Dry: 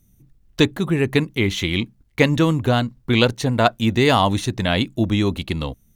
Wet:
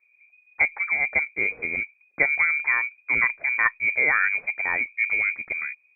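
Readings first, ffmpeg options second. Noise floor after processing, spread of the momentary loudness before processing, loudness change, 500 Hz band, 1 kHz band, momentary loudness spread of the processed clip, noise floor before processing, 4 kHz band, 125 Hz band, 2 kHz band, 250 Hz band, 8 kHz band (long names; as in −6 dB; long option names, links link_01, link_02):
−64 dBFS, 7 LU, −2.5 dB, −18.0 dB, −9.0 dB, 8 LU, −59 dBFS, below −40 dB, below −30 dB, +6.0 dB, −26.5 dB, below −40 dB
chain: -af "lowpass=frequency=2100:width_type=q:width=0.5098,lowpass=frequency=2100:width_type=q:width=0.6013,lowpass=frequency=2100:width_type=q:width=0.9,lowpass=frequency=2100:width_type=q:width=2.563,afreqshift=-2500,volume=-5dB" -ar 48000 -c:a libopus -b:a 256k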